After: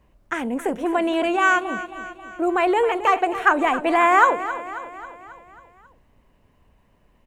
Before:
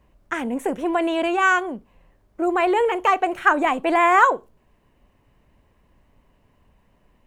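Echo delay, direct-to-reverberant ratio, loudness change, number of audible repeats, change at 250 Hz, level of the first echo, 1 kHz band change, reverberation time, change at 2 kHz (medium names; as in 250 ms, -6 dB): 270 ms, no reverb, 0.0 dB, 5, +0.5 dB, -13.0 dB, +0.5 dB, no reverb, +0.5 dB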